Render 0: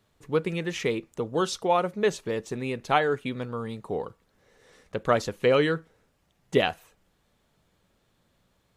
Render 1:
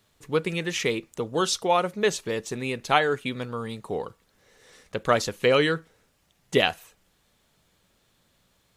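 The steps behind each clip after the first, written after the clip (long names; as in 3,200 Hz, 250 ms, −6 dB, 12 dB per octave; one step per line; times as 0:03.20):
high-shelf EQ 2,000 Hz +8 dB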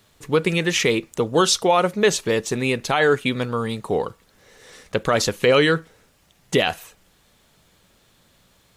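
brickwall limiter −15 dBFS, peak gain reduction 10.5 dB
level +8 dB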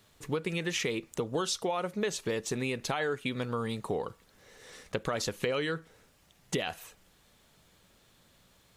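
downward compressor 5 to 1, threshold −24 dBFS, peak gain reduction 11 dB
level −5 dB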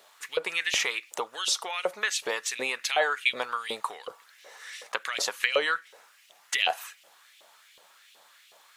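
auto-filter high-pass saw up 2.7 Hz 540–3,000 Hz
level +6 dB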